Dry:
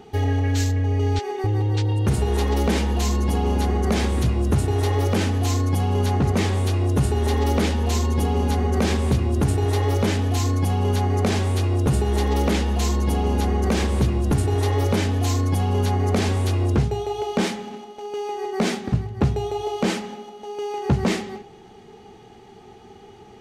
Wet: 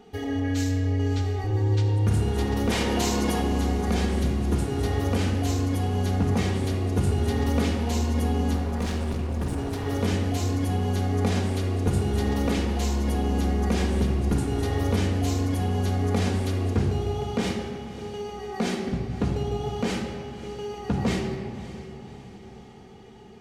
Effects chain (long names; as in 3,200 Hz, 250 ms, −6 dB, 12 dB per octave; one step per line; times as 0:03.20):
0:02.70–0:03.40: ceiling on every frequency bin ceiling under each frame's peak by 17 dB
on a send: feedback delay with all-pass diffusion 582 ms, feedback 55%, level −14.5 dB
0:08.53–0:09.87: on the sum: gain into a clipping stage and back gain 21 dB
rectangular room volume 2,400 cubic metres, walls mixed, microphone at 1.8 metres
level −7 dB